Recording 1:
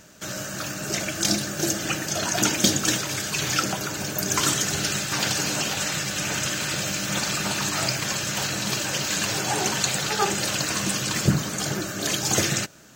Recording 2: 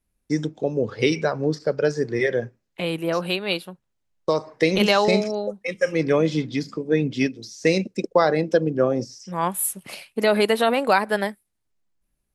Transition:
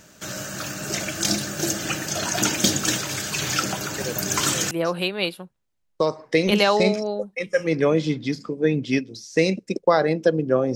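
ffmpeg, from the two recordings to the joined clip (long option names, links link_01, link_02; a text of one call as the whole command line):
ffmpeg -i cue0.wav -i cue1.wav -filter_complex "[1:a]asplit=2[link_01][link_02];[0:a]apad=whole_dur=10.75,atrim=end=10.75,atrim=end=4.712[link_03];[link_02]atrim=start=2.988:end=9.03[link_04];[link_01]atrim=start=2.26:end=2.99,asetpts=PTS-STARTPTS,volume=-8.5dB,afade=type=in:duration=0.004:curve=hsin,afade=type=out:start_time=0.726:duration=0.004:curve=hsin,adelay=3980[link_05];[link_03][link_04]acrossfade=duration=0.004:curve1=hsin:curve2=hsin[link_06];[link_06][link_05]amix=inputs=2:normalize=0" out.wav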